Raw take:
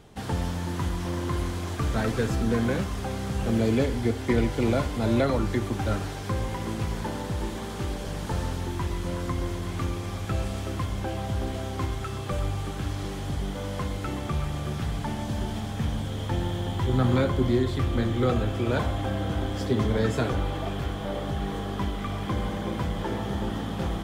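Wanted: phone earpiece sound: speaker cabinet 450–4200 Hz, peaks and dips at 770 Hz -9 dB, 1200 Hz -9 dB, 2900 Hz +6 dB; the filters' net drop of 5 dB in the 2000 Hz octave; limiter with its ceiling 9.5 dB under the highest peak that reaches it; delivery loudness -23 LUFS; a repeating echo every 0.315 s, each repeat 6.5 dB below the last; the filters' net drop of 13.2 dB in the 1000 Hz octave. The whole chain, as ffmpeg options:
-af "equalizer=f=1k:t=o:g=-7.5,equalizer=f=2k:t=o:g=-3.5,alimiter=limit=-22.5dB:level=0:latency=1,highpass=450,equalizer=f=770:t=q:w=4:g=-9,equalizer=f=1.2k:t=q:w=4:g=-9,equalizer=f=2.9k:t=q:w=4:g=6,lowpass=f=4.2k:w=0.5412,lowpass=f=4.2k:w=1.3066,aecho=1:1:315|630|945|1260|1575|1890:0.473|0.222|0.105|0.0491|0.0231|0.0109,volume=17dB"

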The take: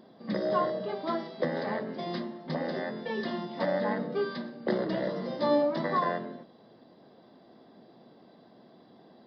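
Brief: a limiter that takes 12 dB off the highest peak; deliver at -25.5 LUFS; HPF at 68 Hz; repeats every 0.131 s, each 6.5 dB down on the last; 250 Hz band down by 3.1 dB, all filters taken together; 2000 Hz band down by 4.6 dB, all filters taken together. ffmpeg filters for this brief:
-af "highpass=68,equalizer=f=250:t=o:g=-4,equalizer=f=2k:t=o:g=-5.5,alimiter=level_in=4.5dB:limit=-24dB:level=0:latency=1,volume=-4.5dB,aecho=1:1:131|262|393|524|655|786:0.473|0.222|0.105|0.0491|0.0231|0.0109,volume=11.5dB"

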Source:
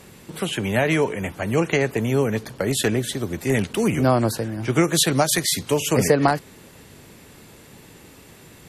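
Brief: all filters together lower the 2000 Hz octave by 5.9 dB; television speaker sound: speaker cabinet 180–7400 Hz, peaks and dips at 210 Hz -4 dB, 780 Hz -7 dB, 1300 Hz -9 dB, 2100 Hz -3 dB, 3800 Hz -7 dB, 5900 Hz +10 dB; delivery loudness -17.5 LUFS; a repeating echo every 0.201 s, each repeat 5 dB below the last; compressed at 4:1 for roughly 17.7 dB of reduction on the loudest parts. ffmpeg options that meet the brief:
-af "equalizer=f=2k:t=o:g=-3.5,acompressor=threshold=-36dB:ratio=4,highpass=f=180:w=0.5412,highpass=f=180:w=1.3066,equalizer=f=210:t=q:w=4:g=-4,equalizer=f=780:t=q:w=4:g=-7,equalizer=f=1.3k:t=q:w=4:g=-9,equalizer=f=2.1k:t=q:w=4:g=-3,equalizer=f=3.8k:t=q:w=4:g=-7,equalizer=f=5.9k:t=q:w=4:g=10,lowpass=f=7.4k:w=0.5412,lowpass=f=7.4k:w=1.3066,aecho=1:1:201|402|603|804|1005|1206|1407:0.562|0.315|0.176|0.0988|0.0553|0.031|0.0173,volume=20.5dB"

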